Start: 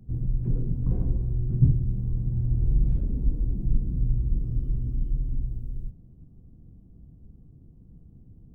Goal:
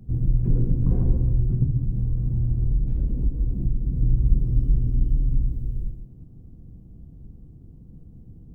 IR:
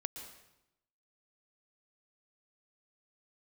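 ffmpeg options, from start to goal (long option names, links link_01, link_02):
-filter_complex "[1:a]atrim=start_sample=2205,afade=type=out:start_time=0.22:duration=0.01,atrim=end_sample=10143[link_01];[0:a][link_01]afir=irnorm=-1:irlink=0,asettb=1/sr,asplit=3[link_02][link_03][link_04];[link_02]atrim=end=1.484[link_05];[link_03]atrim=start=1.48:end=3.99,asetpts=PTS-STARTPTS,afade=type=in:duration=0.004:curve=qsin,afade=type=out:start_time=2.506:duration=0.004:curve=qsin,acompressor=threshold=-25dB:ratio=6[link_06];[link_04]atrim=start=3.986[link_07];[link_05][link_06]acrossfade=duration=0.004:curve1=hsin:curve2=qsin[link_08];[link_08][link_07]acrossfade=duration=0.004:curve1=qsin:curve2=hsin,volume=7dB"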